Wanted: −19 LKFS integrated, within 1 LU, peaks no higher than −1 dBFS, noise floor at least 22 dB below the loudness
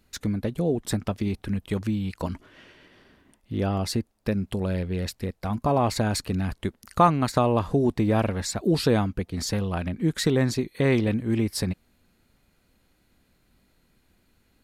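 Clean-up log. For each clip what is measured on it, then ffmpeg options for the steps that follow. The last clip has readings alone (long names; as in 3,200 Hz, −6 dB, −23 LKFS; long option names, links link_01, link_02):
integrated loudness −26.0 LKFS; sample peak −6.0 dBFS; target loudness −19.0 LKFS
→ -af "volume=7dB,alimiter=limit=-1dB:level=0:latency=1"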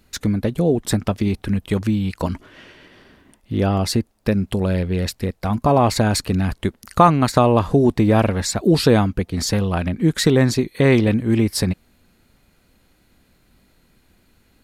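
integrated loudness −19.0 LKFS; sample peak −1.0 dBFS; background noise floor −60 dBFS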